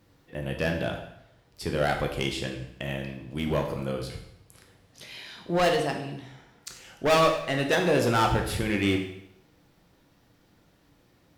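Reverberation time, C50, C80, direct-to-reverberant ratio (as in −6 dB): 0.80 s, 6.5 dB, 9.5 dB, 2.5 dB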